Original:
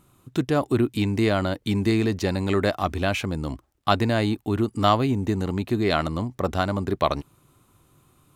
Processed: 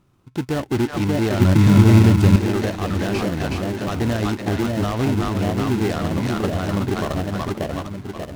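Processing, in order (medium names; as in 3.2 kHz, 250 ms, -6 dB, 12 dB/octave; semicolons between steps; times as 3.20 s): on a send: two-band feedback delay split 730 Hz, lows 586 ms, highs 371 ms, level -3 dB; on the sum: peak limiter -14 dBFS, peak gain reduction 10 dB; treble shelf 7.3 kHz -10.5 dB; level rider gain up to 4 dB; 1.40–2.36 s: tone controls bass +13 dB, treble +3 dB; in parallel at -4 dB: sample-and-hold 37×; on the sum: delay time shaken by noise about 1.9 kHz, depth 0.04 ms; trim -5 dB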